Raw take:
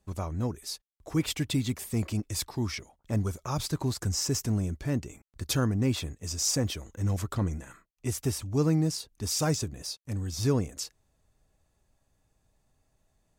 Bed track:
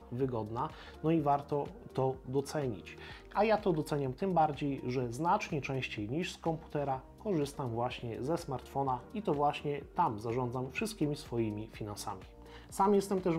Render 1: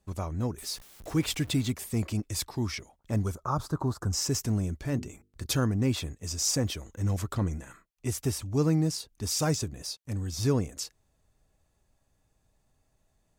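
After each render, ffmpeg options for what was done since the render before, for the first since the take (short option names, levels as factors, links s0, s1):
-filter_complex "[0:a]asettb=1/sr,asplit=3[s0][s1][s2];[s0]atrim=end=0.584[s3];[s1]atrim=start=0.58:end=1.71,asetpts=PTS-STARTPTS,afade=t=in:d=0.004:c=qsin,afade=t=out:st=1.126:d=0.004:c=qsin,aeval=exprs='val(0)+0.5*0.00794*sgn(val(0))':c=same[s4];[s2]atrim=start=1.706[s5];[s3][s4]acrossfade=d=0.004:c1=hsin:c2=qsin[s6];[s6][s5]acrossfade=d=0.004:c1=qsin:c2=hsin,asettb=1/sr,asplit=3[s7][s8][s9];[s7]atrim=end=3.354[s10];[s8]atrim=start=3.35:end=4.13,asetpts=PTS-STARTPTS,afade=t=in:d=0.004:c=qsin,afade=t=out:st=0.776:d=0.004:c=qsin,highshelf=f=1700:t=q:w=3:g=-9.5[s11];[s9]atrim=start=4.126[s12];[s10][s11]acrossfade=d=0.004:c1=hsin:c2=qsin[s13];[s13][s12]acrossfade=d=0.004:c1=qsin:c2=hsin,asettb=1/sr,asplit=3[s14][s15][s16];[s14]atrim=end=4.814[s17];[s15]atrim=start=4.81:end=5.46,asetpts=PTS-STARTPTS,afade=t=in:d=0.004:c=qsin,afade=t=out:st=0.646:d=0.004:c=qsin,bandreject=f=50:t=h:w=6,bandreject=f=100:t=h:w=6,bandreject=f=150:t=h:w=6,bandreject=f=200:t=h:w=6,bandreject=f=250:t=h:w=6,bandreject=f=300:t=h:w=6,bandreject=f=350:t=h:w=6,bandreject=f=400:t=h:w=6,bandreject=f=450:t=h:w=6[s18];[s16]atrim=start=5.456[s19];[s17][s18]acrossfade=d=0.004:c1=hsin:c2=qsin[s20];[s20][s19]acrossfade=d=0.004:c1=qsin:c2=hsin"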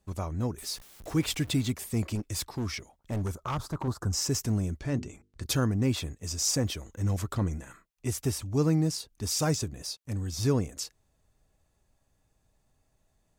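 -filter_complex "[0:a]asettb=1/sr,asplit=3[s0][s1][s2];[s0]atrim=end=2.154[s3];[s1]atrim=start=2.15:end=3.88,asetpts=PTS-STARTPTS,afade=t=in:d=0.004:c=qsin,afade=t=out:st=1.726:d=0.004:c=qsin,asoftclip=type=hard:threshold=0.0422[s4];[s2]atrim=start=3.876[s5];[s3][s4]acrossfade=d=0.004:c1=hsin:c2=qsin[s6];[s6][s5]acrossfade=d=0.004:c1=qsin:c2=hsin,asettb=1/sr,asplit=3[s7][s8][s9];[s7]atrim=end=4.794[s10];[s8]atrim=start=4.79:end=5.43,asetpts=PTS-STARTPTS,afade=t=in:d=0.004:c=qsin,afade=t=out:st=0.636:d=0.004:c=qsin,lowpass=8000[s11];[s9]atrim=start=5.426[s12];[s10][s11]acrossfade=d=0.004:c1=hsin:c2=qsin[s13];[s13][s12]acrossfade=d=0.004:c1=qsin:c2=hsin"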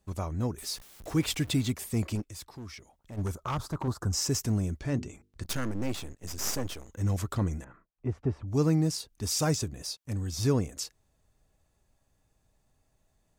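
-filter_complex "[0:a]asplit=3[s0][s1][s2];[s0]afade=t=out:st=2.23:d=0.02[s3];[s1]acompressor=threshold=0.00112:ratio=1.5:attack=3.2:release=140:knee=1:detection=peak,afade=t=in:st=2.23:d=0.02,afade=t=out:st=3.17:d=0.02[s4];[s2]afade=t=in:st=3.17:d=0.02[s5];[s3][s4][s5]amix=inputs=3:normalize=0,asettb=1/sr,asplit=3[s6][s7][s8];[s6]atrim=end=5.434[s9];[s7]atrim=start=5.43:end=6.89,asetpts=PTS-STARTPTS,afade=t=in:d=0.004:c=qsin,afade=t=out:st=1.456:d=0.004:c=qsin,aeval=exprs='max(val(0),0)':c=same[s10];[s8]atrim=start=6.886[s11];[s9][s10]acrossfade=d=0.004:c1=hsin:c2=qsin[s12];[s12][s11]acrossfade=d=0.004:c1=qsin:c2=hsin,asettb=1/sr,asplit=3[s13][s14][s15];[s13]atrim=end=7.644[s16];[s14]atrim=start=7.64:end=8.48,asetpts=PTS-STARTPTS,afade=t=in:d=0.004:c=qsin,afade=t=out:st=0.836:d=0.004:c=qsin,lowpass=1200[s17];[s15]atrim=start=8.476[s18];[s16][s17]acrossfade=d=0.004:c1=hsin:c2=qsin[s19];[s19][s18]acrossfade=d=0.004:c1=qsin:c2=hsin"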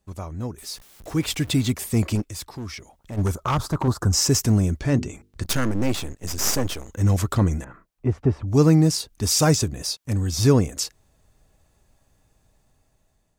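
-af "dynaudnorm=f=600:g=5:m=2.99"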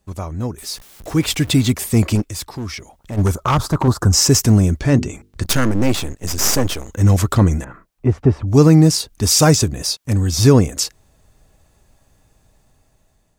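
-af "volume=2.11,alimiter=limit=0.891:level=0:latency=1"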